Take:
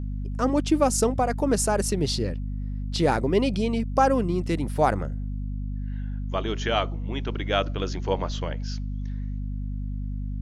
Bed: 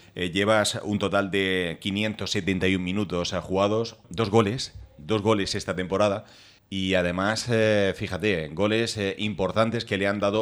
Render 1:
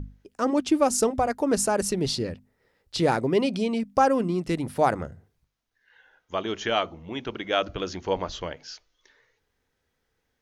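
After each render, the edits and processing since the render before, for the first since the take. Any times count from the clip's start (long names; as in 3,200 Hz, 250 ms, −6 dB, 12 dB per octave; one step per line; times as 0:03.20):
mains-hum notches 50/100/150/200/250 Hz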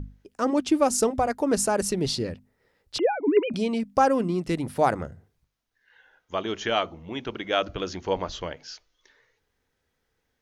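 0:02.98–0:03.54: three sine waves on the formant tracks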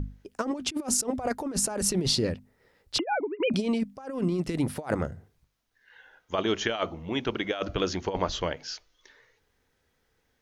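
compressor whose output falls as the input rises −27 dBFS, ratio −0.5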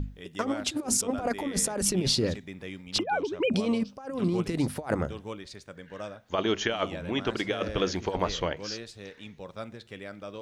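mix in bed −17 dB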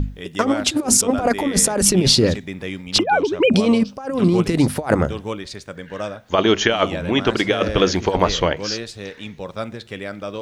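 level +11 dB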